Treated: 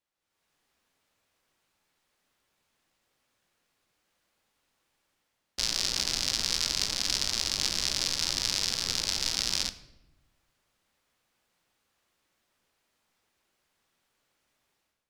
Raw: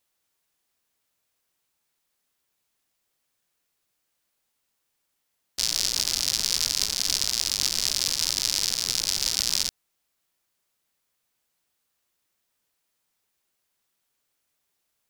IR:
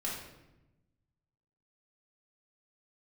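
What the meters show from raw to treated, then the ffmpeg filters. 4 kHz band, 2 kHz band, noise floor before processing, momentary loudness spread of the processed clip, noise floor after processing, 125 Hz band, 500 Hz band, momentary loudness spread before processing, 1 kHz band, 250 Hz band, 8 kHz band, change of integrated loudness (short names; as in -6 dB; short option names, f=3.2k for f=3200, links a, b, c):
-3.5 dB, 0.0 dB, -77 dBFS, 2 LU, -80 dBFS, +1.5 dB, +1.5 dB, 2 LU, +1.0 dB, +2.0 dB, -6.0 dB, -4.0 dB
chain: -filter_complex "[0:a]aemphasis=mode=reproduction:type=50kf,dynaudnorm=f=140:g=5:m=13.5dB,asplit=2[a][b];[1:a]atrim=start_sample=2205[c];[b][c]afir=irnorm=-1:irlink=0,volume=-12dB[d];[a][d]amix=inputs=2:normalize=0,volume=-8dB"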